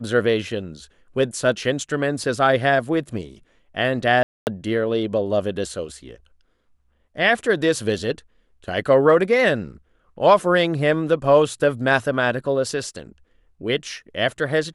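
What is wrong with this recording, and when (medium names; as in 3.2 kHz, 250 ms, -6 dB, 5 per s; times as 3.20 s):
4.23–4.47 s: dropout 239 ms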